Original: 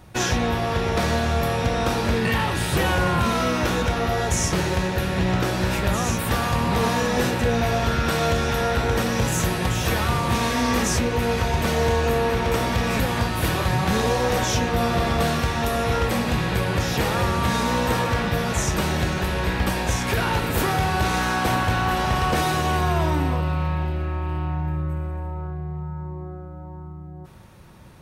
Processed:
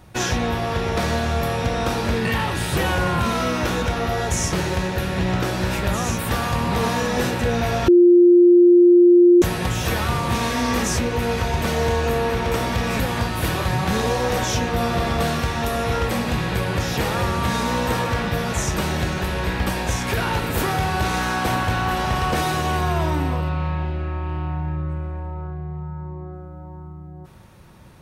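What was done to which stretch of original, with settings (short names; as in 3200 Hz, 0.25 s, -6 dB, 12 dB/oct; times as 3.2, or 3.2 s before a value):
7.88–9.42 bleep 351 Hz -8 dBFS
23.49–26.33 LPF 5500 Hz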